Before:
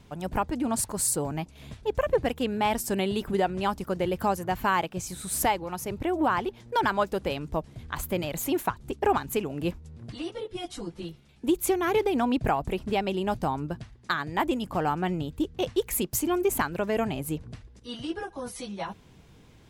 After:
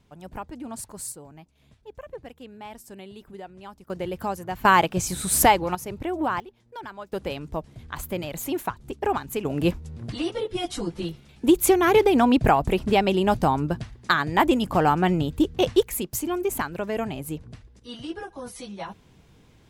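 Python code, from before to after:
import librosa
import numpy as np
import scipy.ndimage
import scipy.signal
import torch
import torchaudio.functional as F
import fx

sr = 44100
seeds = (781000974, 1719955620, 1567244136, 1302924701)

y = fx.gain(x, sr, db=fx.steps((0.0, -8.5), (1.12, -15.0), (3.9, -3.0), (4.65, 8.0), (5.75, -1.0), (6.4, -13.5), (7.13, -1.0), (9.45, 7.0), (15.83, -1.0)))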